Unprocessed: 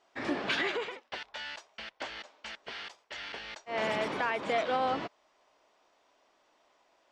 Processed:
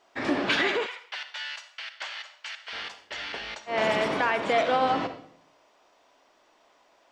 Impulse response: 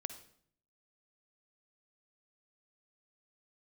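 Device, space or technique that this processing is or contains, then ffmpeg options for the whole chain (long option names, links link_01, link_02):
bathroom: -filter_complex "[1:a]atrim=start_sample=2205[link_01];[0:a][link_01]afir=irnorm=-1:irlink=0,asettb=1/sr,asplit=3[link_02][link_03][link_04];[link_02]atrim=end=0.864[link_05];[link_03]atrim=start=0.86:end=2.73,asetpts=PTS-STARTPTS,afade=type=in:duration=0.004:curve=qsin,afade=type=out:start_time=1.866:duration=0.004:curve=qsin,highpass=1200[link_06];[link_04]atrim=start=2.726[link_07];[link_05][link_06]acrossfade=duration=0.004:curve1=hsin:curve2=qsin[link_08];[link_08][link_07]acrossfade=duration=0.004:curve1=qsin:curve2=hsin,volume=8dB"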